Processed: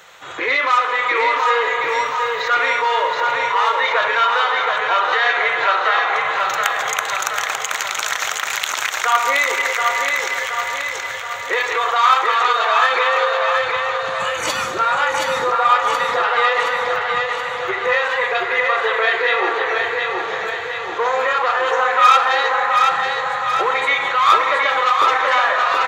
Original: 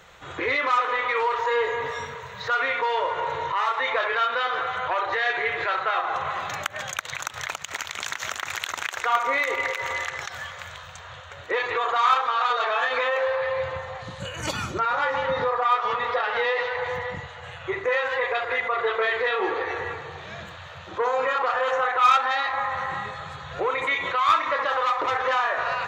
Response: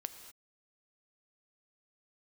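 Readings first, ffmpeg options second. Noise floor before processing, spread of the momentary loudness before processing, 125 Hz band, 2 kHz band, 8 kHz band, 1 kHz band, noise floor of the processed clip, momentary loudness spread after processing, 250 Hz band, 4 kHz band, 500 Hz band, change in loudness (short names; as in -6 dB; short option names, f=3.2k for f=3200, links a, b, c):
-41 dBFS, 13 LU, n/a, +8.5 dB, +11.0 dB, +8.0 dB, -26 dBFS, 7 LU, +2.5 dB, +9.5 dB, +5.0 dB, +7.5 dB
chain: -filter_complex "[0:a]highpass=f=580:p=1,aecho=1:1:724|1448|2172|2896|3620|4344|5068|5792:0.631|0.36|0.205|0.117|0.0666|0.038|0.0216|0.0123,asplit=2[a][b];[1:a]atrim=start_sample=2205,highshelf=f=6.2k:g=9.5[c];[b][c]afir=irnorm=-1:irlink=0,volume=-2dB[d];[a][d]amix=inputs=2:normalize=0,volume=3dB"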